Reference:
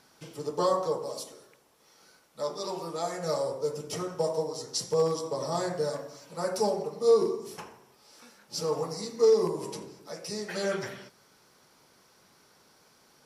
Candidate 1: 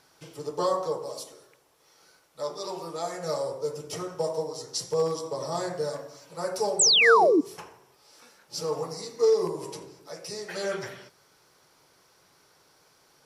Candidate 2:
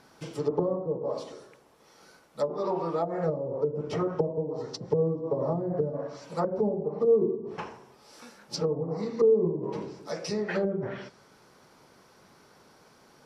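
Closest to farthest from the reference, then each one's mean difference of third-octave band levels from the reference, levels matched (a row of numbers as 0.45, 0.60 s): 1, 2; 3.0, 8.5 dB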